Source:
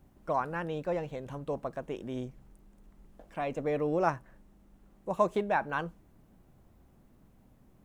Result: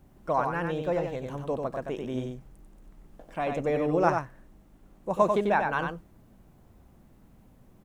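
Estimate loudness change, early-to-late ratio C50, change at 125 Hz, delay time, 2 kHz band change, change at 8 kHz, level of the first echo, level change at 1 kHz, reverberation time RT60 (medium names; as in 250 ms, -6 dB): +5.0 dB, no reverb, +5.0 dB, 93 ms, +4.5 dB, no reading, -5.0 dB, +4.5 dB, no reverb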